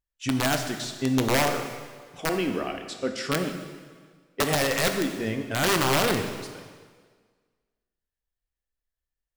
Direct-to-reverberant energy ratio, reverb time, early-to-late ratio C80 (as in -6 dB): 5.0 dB, 1.6 s, 8.0 dB